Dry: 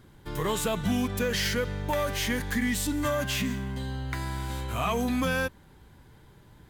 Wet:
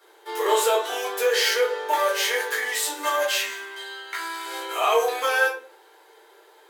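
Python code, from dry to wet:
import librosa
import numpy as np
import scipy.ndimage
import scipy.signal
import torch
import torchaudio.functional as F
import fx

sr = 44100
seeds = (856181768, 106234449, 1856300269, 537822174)

y = scipy.signal.sosfilt(scipy.signal.butter(12, 370.0, 'highpass', fs=sr, output='sos'), x)
y = fx.peak_eq(y, sr, hz=530.0, db=-15.0, octaves=0.78, at=(3.23, 4.46))
y = fx.room_shoebox(y, sr, seeds[0], volume_m3=280.0, walls='furnished', distance_m=4.2)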